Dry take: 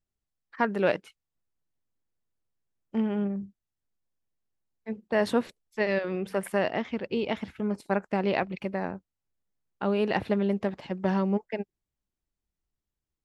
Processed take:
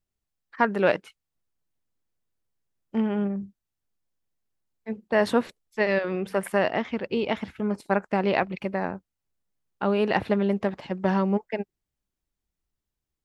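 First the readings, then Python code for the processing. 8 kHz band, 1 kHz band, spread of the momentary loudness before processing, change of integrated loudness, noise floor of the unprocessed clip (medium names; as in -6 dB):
+2.0 dB, +4.5 dB, 11 LU, +3.0 dB, under -85 dBFS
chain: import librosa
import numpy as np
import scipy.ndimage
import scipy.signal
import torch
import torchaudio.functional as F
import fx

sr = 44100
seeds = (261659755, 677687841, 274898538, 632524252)

y = fx.dynamic_eq(x, sr, hz=1200.0, q=0.74, threshold_db=-40.0, ratio=4.0, max_db=3)
y = y * librosa.db_to_amplitude(2.0)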